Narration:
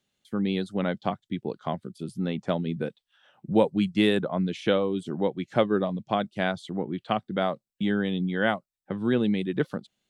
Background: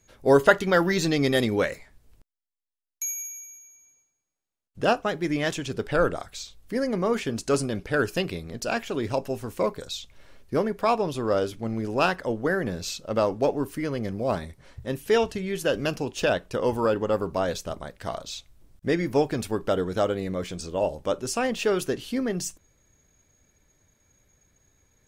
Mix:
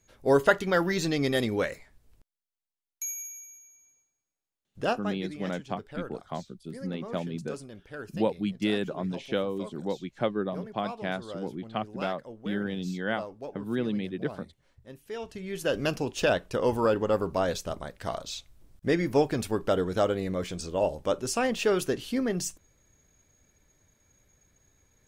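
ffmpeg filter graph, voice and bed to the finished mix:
-filter_complex "[0:a]adelay=4650,volume=-5.5dB[a];[1:a]volume=11.5dB,afade=t=out:st=4.75:d=0.61:silence=0.237137,afade=t=in:st=15.17:d=0.71:silence=0.16788[b];[a][b]amix=inputs=2:normalize=0"

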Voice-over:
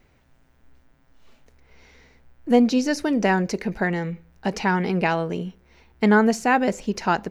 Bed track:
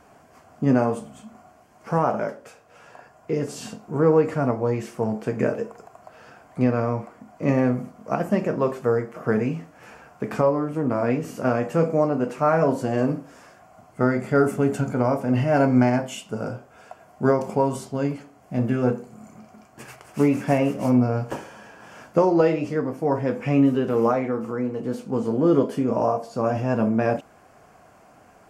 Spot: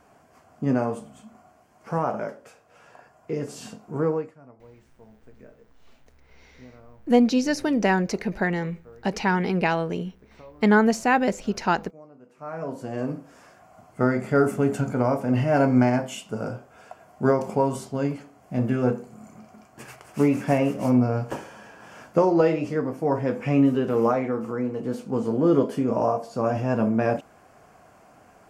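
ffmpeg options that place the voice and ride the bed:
-filter_complex "[0:a]adelay=4600,volume=-1dB[a];[1:a]volume=22dB,afade=t=out:st=4:d=0.33:silence=0.0707946,afade=t=in:st=12.29:d=1.47:silence=0.0501187[b];[a][b]amix=inputs=2:normalize=0"

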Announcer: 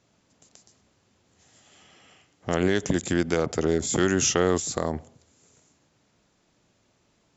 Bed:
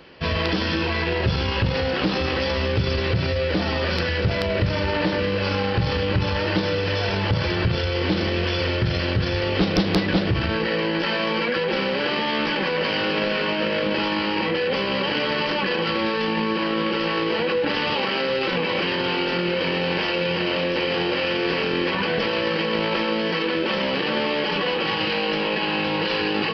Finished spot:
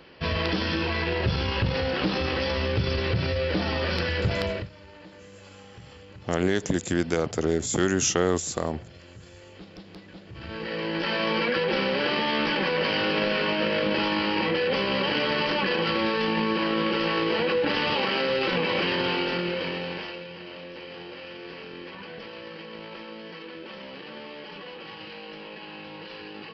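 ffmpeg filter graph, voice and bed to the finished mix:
-filter_complex "[0:a]adelay=3800,volume=-1dB[a];[1:a]volume=19.5dB,afade=t=out:st=4.45:d=0.24:silence=0.0841395,afade=t=in:st=10.29:d=1.01:silence=0.0707946,afade=t=out:st=19.01:d=1.26:silence=0.16788[b];[a][b]amix=inputs=2:normalize=0"

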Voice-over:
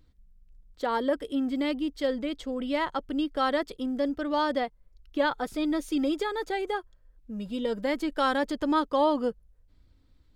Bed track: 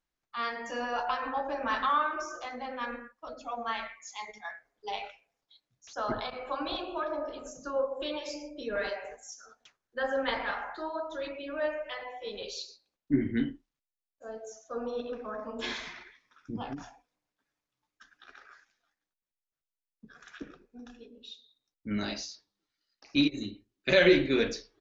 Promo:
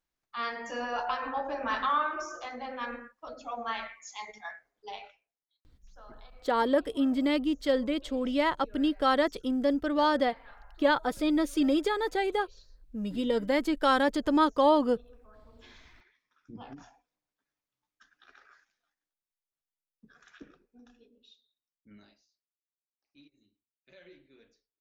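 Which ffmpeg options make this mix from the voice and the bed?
-filter_complex "[0:a]adelay=5650,volume=1.5dB[a];[1:a]volume=14.5dB,afade=t=out:st=4.47:d=0.91:silence=0.105925,afade=t=in:st=15.69:d=1.49:silence=0.177828,afade=t=out:st=19.94:d=2.24:silence=0.0354813[b];[a][b]amix=inputs=2:normalize=0"

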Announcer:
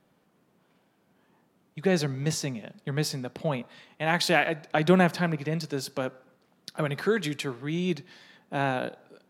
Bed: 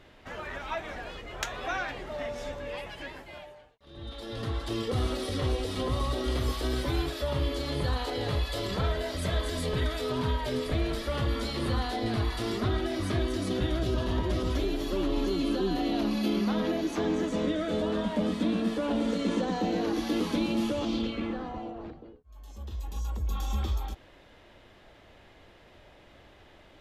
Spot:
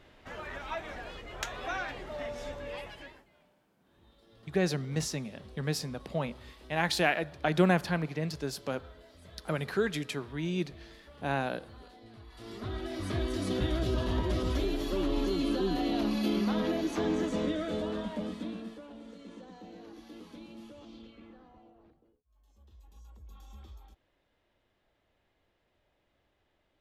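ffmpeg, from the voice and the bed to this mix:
-filter_complex "[0:a]adelay=2700,volume=-4dB[a];[1:a]volume=18.5dB,afade=t=out:st=2.83:d=0.47:silence=0.1,afade=t=in:st=12.27:d=1.21:silence=0.0841395,afade=t=out:st=17.27:d=1.62:silence=0.11885[b];[a][b]amix=inputs=2:normalize=0"

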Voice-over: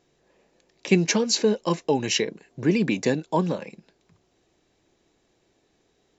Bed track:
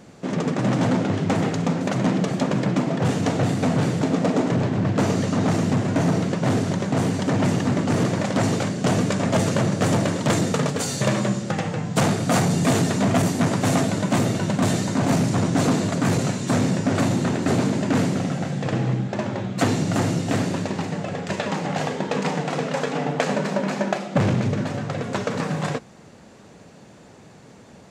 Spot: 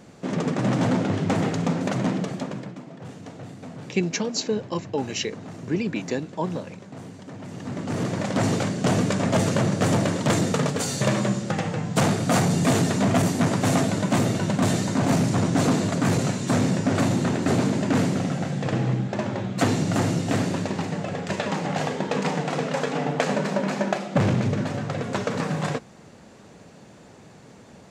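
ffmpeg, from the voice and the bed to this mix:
-filter_complex "[0:a]adelay=3050,volume=-4.5dB[a];[1:a]volume=15.5dB,afade=t=out:st=1.87:d=0.89:silence=0.149624,afade=t=in:st=7.48:d=1.02:silence=0.141254[b];[a][b]amix=inputs=2:normalize=0"

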